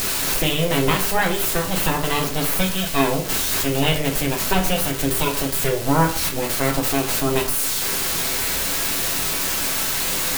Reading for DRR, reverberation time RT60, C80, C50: 1.5 dB, 0.45 s, 14.5 dB, 10.0 dB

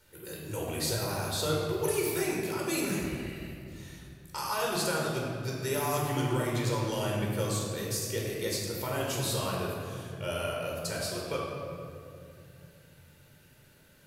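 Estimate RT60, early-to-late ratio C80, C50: 2.5 s, 1.5 dB, 0.0 dB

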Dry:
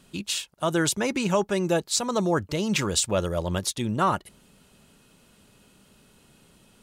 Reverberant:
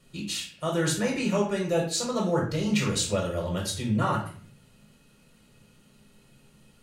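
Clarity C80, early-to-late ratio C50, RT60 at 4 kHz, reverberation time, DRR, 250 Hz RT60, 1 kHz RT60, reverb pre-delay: 10.0 dB, 6.0 dB, 0.40 s, 0.50 s, −1.5 dB, 0.70 s, 0.45 s, 6 ms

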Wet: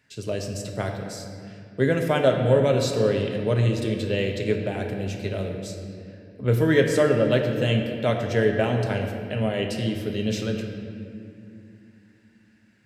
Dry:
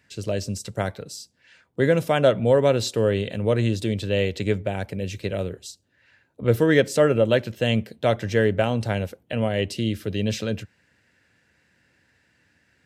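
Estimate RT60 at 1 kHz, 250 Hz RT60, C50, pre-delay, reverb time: 2.2 s, 4.2 s, 4.5 dB, 5 ms, 2.6 s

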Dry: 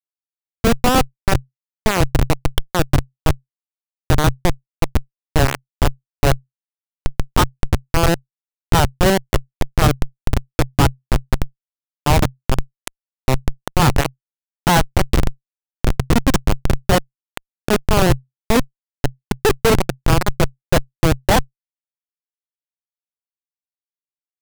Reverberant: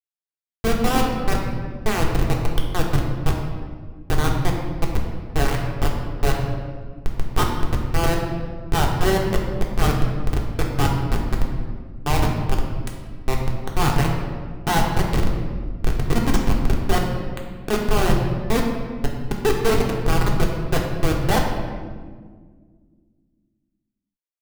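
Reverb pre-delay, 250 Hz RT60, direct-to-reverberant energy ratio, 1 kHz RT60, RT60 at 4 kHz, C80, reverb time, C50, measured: 3 ms, 2.6 s, −1.0 dB, 1.5 s, 1.1 s, 5.0 dB, 1.7 s, 3.5 dB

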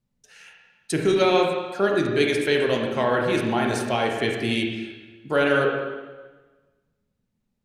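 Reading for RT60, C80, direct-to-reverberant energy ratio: 1.3 s, 4.5 dB, 0.0 dB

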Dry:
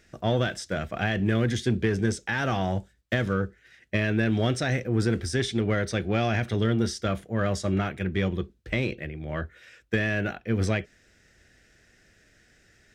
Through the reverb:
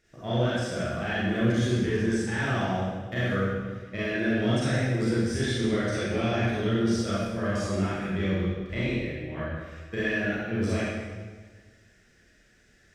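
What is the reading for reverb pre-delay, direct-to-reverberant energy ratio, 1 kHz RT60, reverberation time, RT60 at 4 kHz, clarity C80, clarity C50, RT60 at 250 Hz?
31 ms, −9.5 dB, 1.4 s, 1.5 s, 1.2 s, −0.5 dB, −4.0 dB, 1.7 s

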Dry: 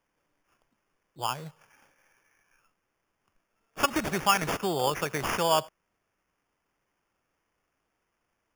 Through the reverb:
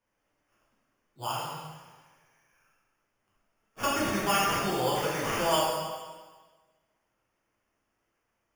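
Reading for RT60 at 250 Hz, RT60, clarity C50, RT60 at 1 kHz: 1.4 s, 1.4 s, −1.0 dB, 1.4 s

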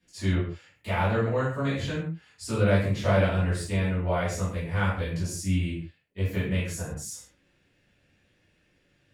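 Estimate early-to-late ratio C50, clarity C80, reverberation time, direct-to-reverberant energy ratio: 3.0 dB, 7.5 dB, non-exponential decay, −12.5 dB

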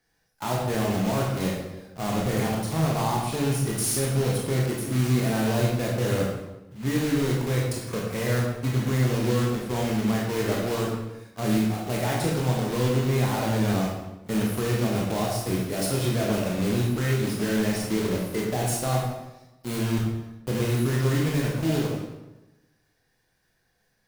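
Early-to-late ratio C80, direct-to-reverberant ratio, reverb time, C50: 4.0 dB, −3.0 dB, 1.0 s, 1.5 dB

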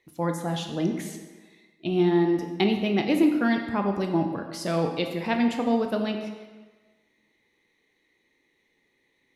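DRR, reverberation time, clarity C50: 4.0 dB, 1.4 s, 6.0 dB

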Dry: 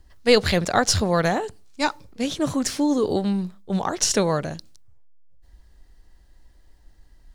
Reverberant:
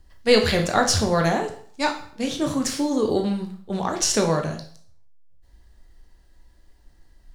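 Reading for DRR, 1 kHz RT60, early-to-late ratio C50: 3.0 dB, 0.55 s, 9.5 dB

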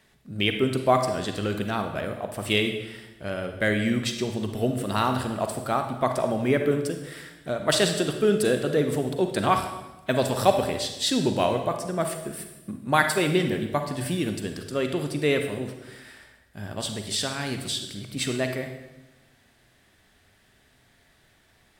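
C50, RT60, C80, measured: 6.5 dB, 1.0 s, 9.5 dB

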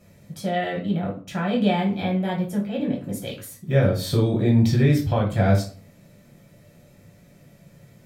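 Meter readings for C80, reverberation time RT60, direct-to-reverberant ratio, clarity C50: 14.0 dB, 0.45 s, −2.5 dB, 8.5 dB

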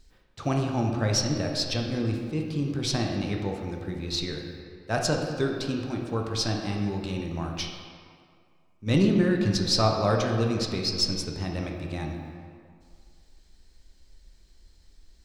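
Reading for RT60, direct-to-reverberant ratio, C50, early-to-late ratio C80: 2.2 s, 1.0 dB, 3.0 dB, 4.5 dB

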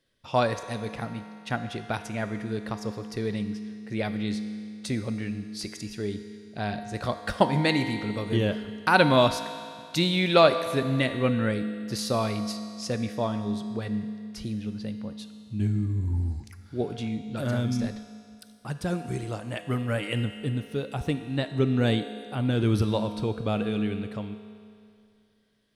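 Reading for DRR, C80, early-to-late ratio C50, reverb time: 8.0 dB, 10.0 dB, 9.0 dB, 2.4 s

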